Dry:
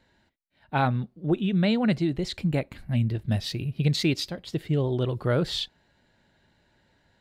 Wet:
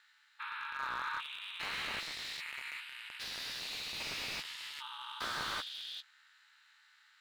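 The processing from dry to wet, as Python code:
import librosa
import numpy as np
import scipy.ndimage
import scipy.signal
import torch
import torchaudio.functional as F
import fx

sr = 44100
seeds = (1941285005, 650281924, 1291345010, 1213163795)

y = fx.spec_steps(x, sr, hold_ms=400)
y = fx.brickwall_highpass(y, sr, low_hz=990.0)
y = y * np.sin(2.0 * np.pi * 150.0 * np.arange(len(y)) / sr)
y = fx.doubler(y, sr, ms=14.0, db=-8.5)
y = fx.slew_limit(y, sr, full_power_hz=15.0)
y = y * 10.0 ** (9.0 / 20.0)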